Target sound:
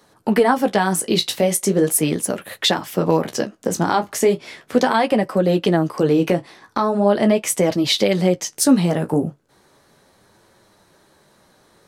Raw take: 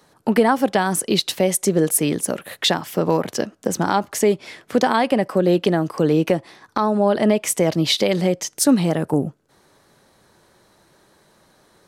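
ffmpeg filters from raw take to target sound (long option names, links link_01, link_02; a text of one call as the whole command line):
ffmpeg -i in.wav -af "flanger=delay=9.2:depth=8.7:regen=-35:speed=0.38:shape=sinusoidal,volume=4.5dB" out.wav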